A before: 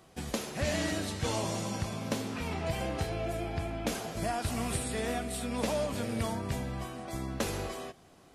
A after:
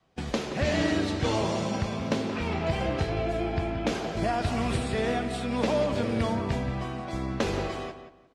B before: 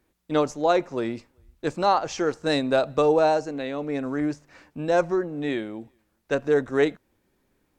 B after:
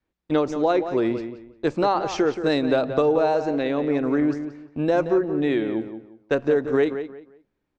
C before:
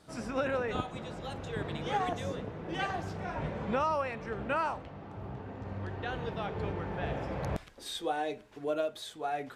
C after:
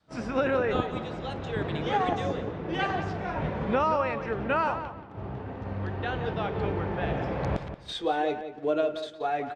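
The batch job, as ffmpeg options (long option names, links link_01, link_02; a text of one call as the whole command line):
ffmpeg -i in.wav -filter_complex "[0:a]lowpass=4700,agate=range=-14dB:threshold=-44dB:ratio=16:detection=peak,adynamicequalizer=threshold=0.0112:dfrequency=360:dqfactor=2:tfrequency=360:tqfactor=2:attack=5:release=100:ratio=0.375:range=2.5:mode=boostabove:tftype=bell,acompressor=threshold=-24dB:ratio=3,asplit=2[link_01][link_02];[link_02]adelay=177,lowpass=frequency=3000:poles=1,volume=-9.5dB,asplit=2[link_03][link_04];[link_04]adelay=177,lowpass=frequency=3000:poles=1,volume=0.26,asplit=2[link_05][link_06];[link_06]adelay=177,lowpass=frequency=3000:poles=1,volume=0.26[link_07];[link_01][link_03][link_05][link_07]amix=inputs=4:normalize=0,volume=5dB" out.wav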